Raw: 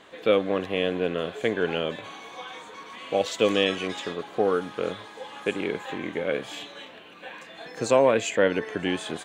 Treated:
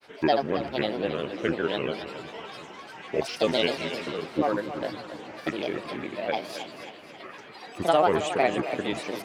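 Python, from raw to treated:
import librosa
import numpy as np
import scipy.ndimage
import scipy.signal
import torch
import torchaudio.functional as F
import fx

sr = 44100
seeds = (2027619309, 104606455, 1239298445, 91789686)

y = fx.granulator(x, sr, seeds[0], grain_ms=100.0, per_s=20.0, spray_ms=37.0, spread_st=7)
y = fx.echo_split(y, sr, split_hz=310.0, low_ms=374, high_ms=270, feedback_pct=52, wet_db=-11)
y = y * librosa.db_to_amplitude(-1.0)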